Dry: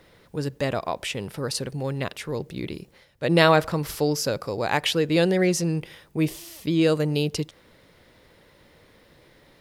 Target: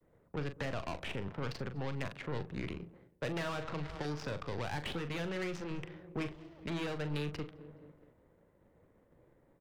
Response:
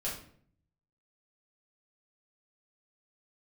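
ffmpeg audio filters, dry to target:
-filter_complex "[0:a]aecho=1:1:209|418|627|836:0.0708|0.0411|0.0238|0.0138,adynamicsmooth=sensitivity=3:basefreq=610,tiltshelf=frequency=790:gain=-5,agate=range=-33dB:threshold=-56dB:ratio=3:detection=peak,aeval=exprs='(tanh(17.8*val(0)+0.45)-tanh(0.45))/17.8':channel_layout=same,asplit=2[link_01][link_02];[1:a]atrim=start_sample=2205,lowpass=1100[link_03];[link_02][link_03]afir=irnorm=-1:irlink=0,volume=-23dB[link_04];[link_01][link_04]amix=inputs=2:normalize=0,acrossover=split=180|660|2000[link_05][link_06][link_07][link_08];[link_05]acompressor=threshold=-38dB:ratio=4[link_09];[link_06]acompressor=threshold=-43dB:ratio=4[link_10];[link_07]acompressor=threshold=-46dB:ratio=4[link_11];[link_08]acompressor=threshold=-45dB:ratio=4[link_12];[link_09][link_10][link_11][link_12]amix=inputs=4:normalize=0,afftfilt=real='re*lt(hypot(re,im),0.141)':imag='im*lt(hypot(re,im),0.141)':win_size=1024:overlap=0.75,adynamicequalizer=threshold=0.00251:dfrequency=540:dqfactor=1.2:tfrequency=540:tqfactor=1.2:attack=5:release=100:ratio=0.375:range=1.5:mode=cutabove:tftype=bell,lowpass=frequency=3400:poles=1,asplit=2[link_13][link_14];[link_14]adelay=41,volume=-10dB[link_15];[link_13][link_15]amix=inputs=2:normalize=0,volume=1.5dB" -ar 44100 -c:a nellymoser

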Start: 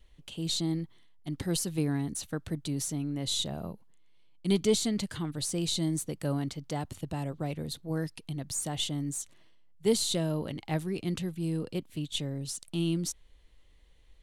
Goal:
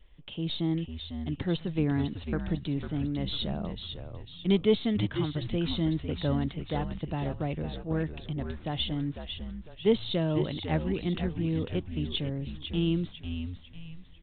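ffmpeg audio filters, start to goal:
ffmpeg -i in.wav -filter_complex "[0:a]asplit=6[link_01][link_02][link_03][link_04][link_05][link_06];[link_02]adelay=499,afreqshift=-85,volume=-7.5dB[link_07];[link_03]adelay=998,afreqshift=-170,volume=-15.2dB[link_08];[link_04]adelay=1497,afreqshift=-255,volume=-23dB[link_09];[link_05]adelay=1996,afreqshift=-340,volume=-30.7dB[link_10];[link_06]adelay=2495,afreqshift=-425,volume=-38.5dB[link_11];[link_01][link_07][link_08][link_09][link_10][link_11]amix=inputs=6:normalize=0,aresample=8000,aresample=44100,volume=2dB" out.wav

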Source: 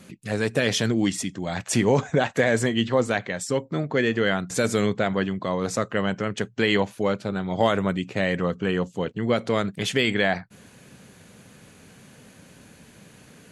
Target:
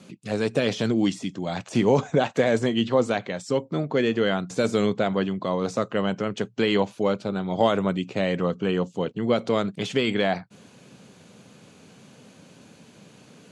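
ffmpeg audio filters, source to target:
ffmpeg -i in.wav -af "deesser=0.7,highpass=130,lowpass=7000,equalizer=frequency=1800:width_type=o:width=0.6:gain=-7.5,volume=1dB" out.wav

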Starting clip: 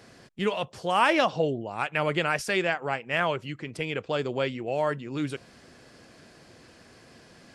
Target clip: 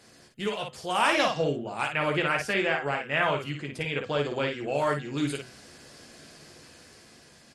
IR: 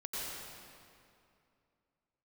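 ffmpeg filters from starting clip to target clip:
-filter_complex "[0:a]asettb=1/sr,asplit=3[link_01][link_02][link_03];[link_01]atrim=end=1.914[link_04];[link_02]atrim=start=1.91:end=4.61,asetpts=PTS-STARTPTS,afade=type=in:duration=0.004:curve=qsin,afade=type=out:start_time=2.696:duration=0.004:curve=qsin,acrossover=split=3200[link_05][link_06];[link_06]acompressor=threshold=-50dB:ratio=4:attack=1:release=60[link_07];[link_05][link_07]amix=inputs=2:normalize=0[link_08];[link_03]atrim=start=4.606[link_09];[link_04][link_08]acrossfade=duration=0.004:curve1=hsin:curve2=qsin[link_10];[link_10][link_09]acrossfade=duration=0.004:curve1=qsin:curve2=hsin,highshelf=frequency=4000:gain=9.5,bandreject=frequency=126.5:width_type=h:width=4,bandreject=frequency=253:width_type=h:width=4,bandreject=frequency=379.5:width_type=h:width=4,bandreject=frequency=506:width_type=h:width=4,bandreject=frequency=632.5:width_type=h:width=4,bandreject=frequency=759:width_type=h:width=4,bandreject=frequency=885.5:width_type=h:width=4,bandreject=frequency=1012:width_type=h:width=4,bandreject=frequency=1138.5:width_type=h:width=4,bandreject=frequency=1265:width_type=h:width=4,bandreject=frequency=1391.5:width_type=h:width=4,bandreject=frequency=1518:width_type=h:width=4,bandreject=frequency=1644.5:width_type=h:width=4,bandreject=frequency=1771:width_type=h:width=4,bandreject=frequency=1897.5:width_type=h:width=4,bandreject=frequency=2024:width_type=h:width=4,bandreject=frequency=2150.5:width_type=h:width=4,bandreject=frequency=2277:width_type=h:width=4,bandreject=frequency=2403.5:width_type=h:width=4,bandreject=frequency=2530:width_type=h:width=4,bandreject=frequency=2656.5:width_type=h:width=4,bandreject=frequency=2783:width_type=h:width=4,bandreject=frequency=2909.5:width_type=h:width=4,bandreject=frequency=3036:width_type=h:width=4,bandreject=frequency=3162.5:width_type=h:width=4,dynaudnorm=framelen=450:gausssize=5:maxgain=5dB,aecho=1:1:14|56:0.447|0.562,volume=-6dB" -ar 48000 -c:a mp2 -b:a 64k

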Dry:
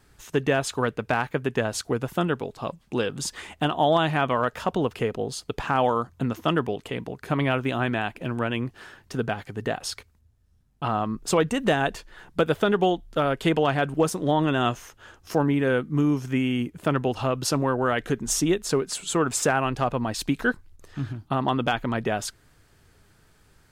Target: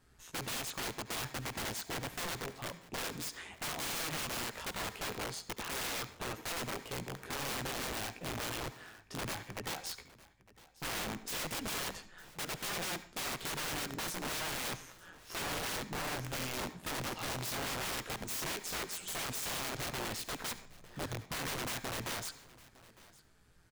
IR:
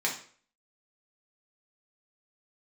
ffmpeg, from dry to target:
-filter_complex "[0:a]flanger=delay=15:depth=2.6:speed=0.82,tremolo=f=170:d=0.519,aeval=exprs='(mod(31.6*val(0)+1,2)-1)/31.6':channel_layout=same,aecho=1:1:907:0.0891,asplit=2[link_01][link_02];[1:a]atrim=start_sample=2205,adelay=69[link_03];[link_02][link_03]afir=irnorm=-1:irlink=0,volume=-21.5dB[link_04];[link_01][link_04]amix=inputs=2:normalize=0,volume=-3dB"

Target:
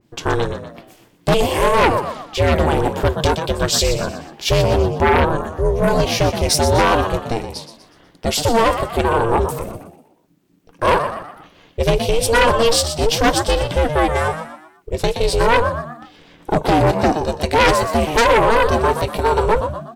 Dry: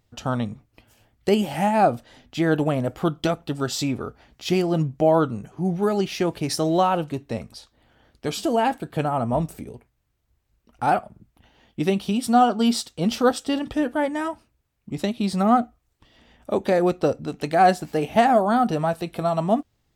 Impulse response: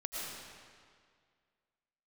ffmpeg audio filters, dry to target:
-filter_complex "[0:a]aeval=exprs='val(0)*sin(2*PI*230*n/s)':channel_layout=same,asplit=5[link_01][link_02][link_03][link_04][link_05];[link_02]adelay=122,afreqshift=73,volume=-10.5dB[link_06];[link_03]adelay=244,afreqshift=146,volume=-18dB[link_07];[link_04]adelay=366,afreqshift=219,volume=-25.6dB[link_08];[link_05]adelay=488,afreqshift=292,volume=-33.1dB[link_09];[link_01][link_06][link_07][link_08][link_09]amix=inputs=5:normalize=0,aeval=exprs='0.473*sin(PI/2*2.82*val(0)/0.473)':channel_layout=same,adynamicequalizer=threshold=0.0398:dfrequency=2500:dqfactor=0.7:tfrequency=2500:tqfactor=0.7:attack=5:release=100:ratio=0.375:range=2:mode=boostabove:tftype=highshelf,volume=-2dB"

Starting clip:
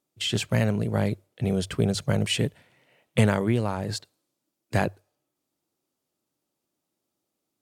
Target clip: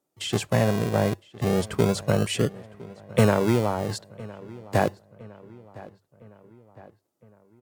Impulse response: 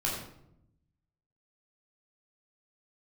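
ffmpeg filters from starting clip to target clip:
-filter_complex "[0:a]acrossover=split=350|4700[link_01][link_02][link_03];[link_01]acrusher=samples=39:mix=1:aa=0.000001:lfo=1:lforange=23.4:lforate=0.28[link_04];[link_02]tiltshelf=frequency=1500:gain=8[link_05];[link_04][link_05][link_03]amix=inputs=3:normalize=0,asplit=2[link_06][link_07];[link_07]adelay=1010,lowpass=frequency=2800:poles=1,volume=-20dB,asplit=2[link_08][link_09];[link_09]adelay=1010,lowpass=frequency=2800:poles=1,volume=0.54,asplit=2[link_10][link_11];[link_11]adelay=1010,lowpass=frequency=2800:poles=1,volume=0.54,asplit=2[link_12][link_13];[link_13]adelay=1010,lowpass=frequency=2800:poles=1,volume=0.54[link_14];[link_06][link_08][link_10][link_12][link_14]amix=inputs=5:normalize=0"

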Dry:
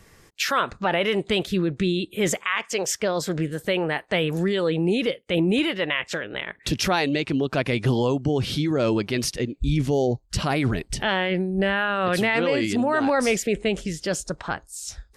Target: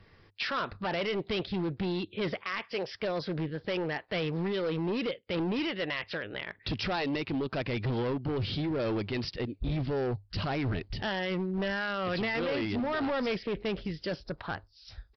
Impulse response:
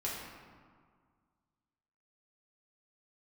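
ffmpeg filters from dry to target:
-af "equalizer=frequency=100:width=7.1:gain=9.5,aresample=11025,volume=21.5dB,asoftclip=hard,volume=-21.5dB,aresample=44100,volume=-6dB"

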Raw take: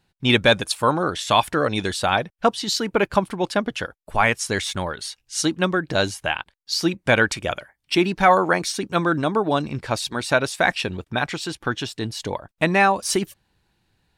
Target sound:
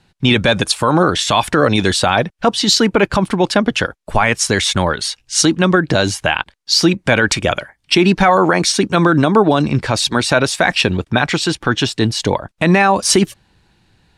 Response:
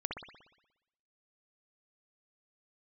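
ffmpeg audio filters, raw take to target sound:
-filter_complex "[0:a]lowpass=9300,lowshelf=frequency=230:gain=-5.5,acrossover=split=280|2700[link_01][link_02][link_03];[link_01]acontrast=38[link_04];[link_04][link_02][link_03]amix=inputs=3:normalize=0,alimiter=level_in=12.5dB:limit=-1dB:release=50:level=0:latency=1,volume=-1dB"

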